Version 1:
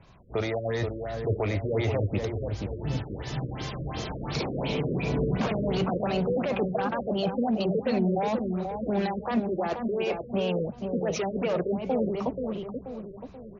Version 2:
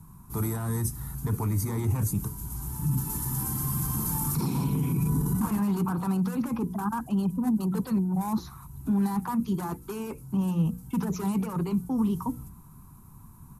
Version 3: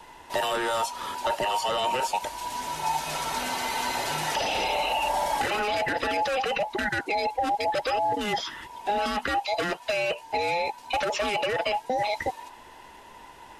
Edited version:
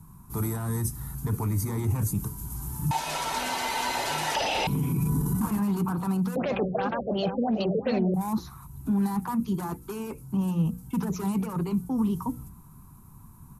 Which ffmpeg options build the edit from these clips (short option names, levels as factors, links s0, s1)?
-filter_complex "[1:a]asplit=3[s0][s1][s2];[s0]atrim=end=2.912[s3];[2:a]atrim=start=2.908:end=4.672[s4];[s1]atrim=start=4.668:end=6.362[s5];[0:a]atrim=start=6.358:end=8.142[s6];[s2]atrim=start=8.138[s7];[s3][s4]acrossfade=d=0.004:c1=hsin:c2=hsin[s8];[s8][s5]acrossfade=d=0.004:c1=hsin:c2=hsin[s9];[s9][s6]acrossfade=d=0.004:c1=hsin:c2=hsin[s10];[s10][s7]acrossfade=d=0.004:c1=hsin:c2=hsin"